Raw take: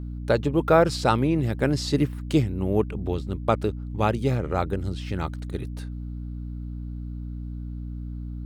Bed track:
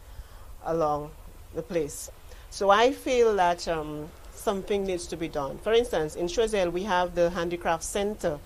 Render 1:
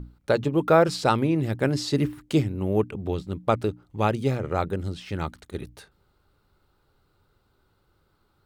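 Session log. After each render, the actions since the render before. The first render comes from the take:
mains-hum notches 60/120/180/240/300 Hz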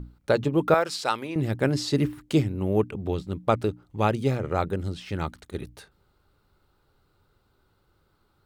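0:00.74–0:01.36: high-pass filter 1,100 Hz 6 dB per octave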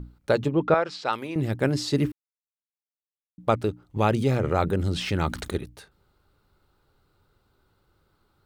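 0:00.52–0:01.13: high-frequency loss of the air 150 metres
0:02.12–0:03.38: silence
0:03.96–0:05.58: envelope flattener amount 50%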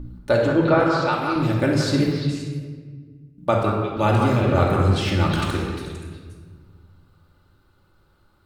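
on a send: echo through a band-pass that steps 175 ms, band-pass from 1,200 Hz, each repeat 1.4 octaves, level −2 dB
on the sum: rectangular room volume 1,800 cubic metres, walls mixed, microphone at 2.5 metres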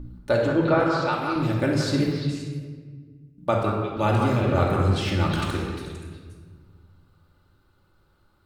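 level −3 dB

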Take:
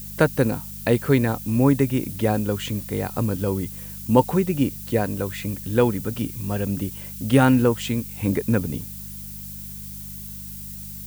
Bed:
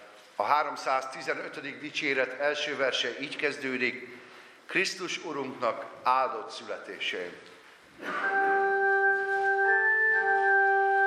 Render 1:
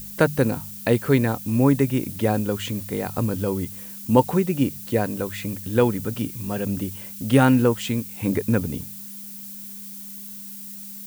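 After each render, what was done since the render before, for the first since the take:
hum removal 50 Hz, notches 3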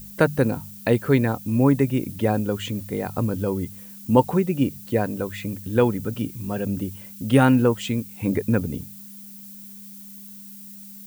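broadband denoise 6 dB, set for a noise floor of −38 dBFS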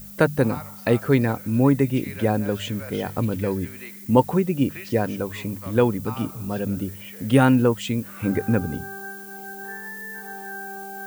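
mix in bed −12.5 dB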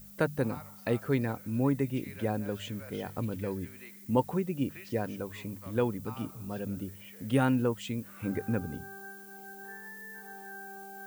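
level −10 dB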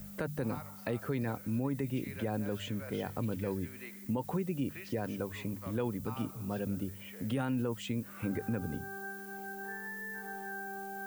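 brickwall limiter −25 dBFS, peak gain reduction 11 dB
multiband upward and downward compressor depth 40%

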